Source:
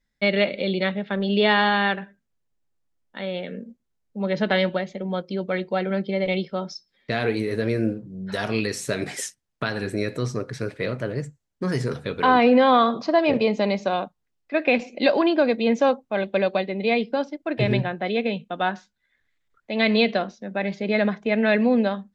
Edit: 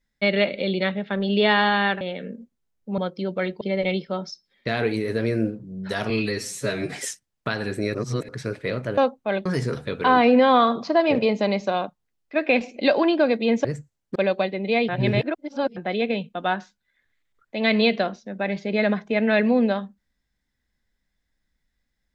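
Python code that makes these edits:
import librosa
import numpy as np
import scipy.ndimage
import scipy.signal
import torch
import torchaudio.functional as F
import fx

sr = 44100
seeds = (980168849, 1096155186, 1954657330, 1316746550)

y = fx.edit(x, sr, fx.cut(start_s=2.01, length_s=1.28),
    fx.cut(start_s=4.26, length_s=0.84),
    fx.cut(start_s=5.73, length_s=0.31),
    fx.stretch_span(start_s=8.53, length_s=0.55, factor=1.5),
    fx.reverse_span(start_s=10.1, length_s=0.34),
    fx.swap(start_s=11.13, length_s=0.51, other_s=15.83, other_length_s=0.48),
    fx.reverse_span(start_s=17.04, length_s=0.88), tone=tone)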